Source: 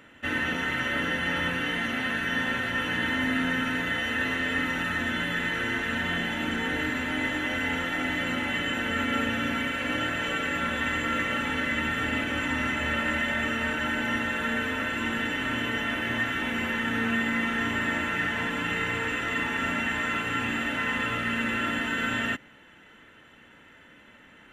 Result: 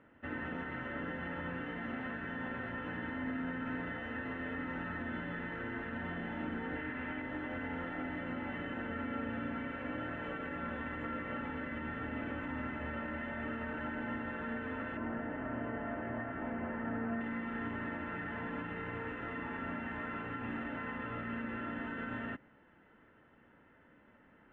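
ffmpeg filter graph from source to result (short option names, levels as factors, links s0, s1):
-filter_complex "[0:a]asettb=1/sr,asplit=3[s0][s1][s2];[s0]atrim=end=6.754[s3];[s1]atrim=start=6.75:end=7.22,asetpts=PTS-STARTPTS,afade=t=in:d=0.004:c=qsin,afade=t=out:st=0.466:d=0.004:c=qsin,acrossover=split=3700[s4][s5];[s5]acompressor=threshold=0.00141:ratio=4:attack=1:release=60[s6];[s4][s6]amix=inputs=2:normalize=0,equalizer=f=2700:t=o:w=1.8:g=7.5[s7];[s2]atrim=start=7.216[s8];[s3][s7]acrossfade=d=0.004:c1=hsin:c2=qsin[s9];[s9][s8]acrossfade=d=0.004:c1=qsin:c2=hsin,asettb=1/sr,asplit=3[s10][s11][s12];[s10]atrim=end=14.974[s13];[s11]atrim=start=14.97:end=17.21,asetpts=PTS-STARTPTS,afade=t=in:d=0.004:c=qsin,afade=t=out:st=2.236:d=0.004:c=qsin,lowpass=1800,equalizer=f=660:t=o:w=0.25:g=10[s14];[s12]atrim=start=17.206[s15];[s13][s14]acrossfade=d=0.004:c1=hsin:c2=qsin[s16];[s16][s15]acrossfade=d=0.004:c1=qsin:c2=hsin,alimiter=limit=0.1:level=0:latency=1:release=85,lowpass=1300,volume=0.447"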